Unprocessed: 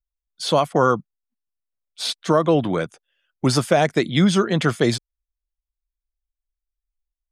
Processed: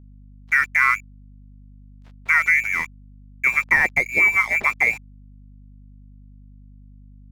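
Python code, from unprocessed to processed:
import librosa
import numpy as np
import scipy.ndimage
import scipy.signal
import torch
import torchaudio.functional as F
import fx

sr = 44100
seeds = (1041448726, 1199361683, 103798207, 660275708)

y = fx.freq_invert(x, sr, carrier_hz=2500)
y = np.sign(y) * np.maximum(np.abs(y) - 10.0 ** (-35.5 / 20.0), 0.0)
y = fx.add_hum(y, sr, base_hz=50, snr_db=22)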